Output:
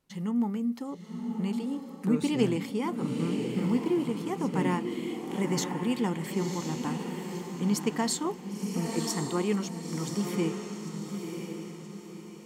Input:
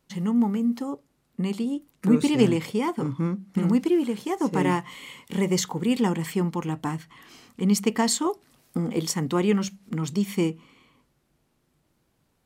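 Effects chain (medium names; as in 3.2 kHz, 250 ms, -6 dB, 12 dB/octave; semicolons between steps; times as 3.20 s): 3.11–4.00 s: median filter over 5 samples; echo that smears into a reverb 1018 ms, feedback 40%, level -5 dB; trim -6 dB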